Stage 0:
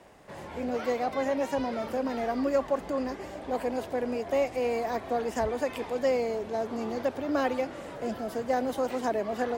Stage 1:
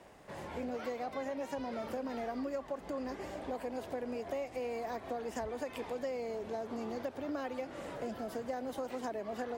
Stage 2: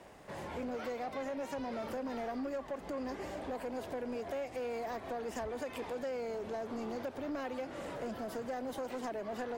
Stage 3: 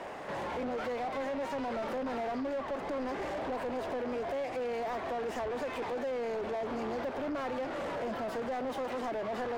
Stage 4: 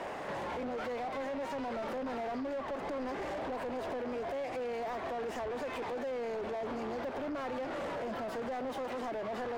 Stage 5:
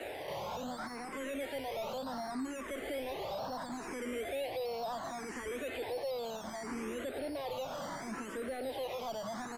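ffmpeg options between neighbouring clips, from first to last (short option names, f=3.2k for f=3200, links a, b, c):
-af "acompressor=threshold=-33dB:ratio=6,volume=-2.5dB"
-af "asoftclip=type=tanh:threshold=-34.5dB,volume=2dB"
-filter_complex "[0:a]asplit=2[a][b];[b]highpass=f=720:p=1,volume=23dB,asoftclip=type=tanh:threshold=-32.5dB[c];[a][c]amix=inputs=2:normalize=0,lowpass=f=1.4k:p=1,volume=-6dB,volume=3dB"
-af "alimiter=level_in=10.5dB:limit=-24dB:level=0:latency=1:release=231,volume=-10.5dB,volume=2dB"
-filter_complex "[0:a]acrossover=split=120|820[a][b][c];[b]acrusher=samples=13:mix=1:aa=0.000001:lfo=1:lforange=7.8:lforate=0.79[d];[a][d][c]amix=inputs=3:normalize=0,aresample=32000,aresample=44100,asplit=2[e][f];[f]afreqshift=0.7[g];[e][g]amix=inputs=2:normalize=1,volume=1dB"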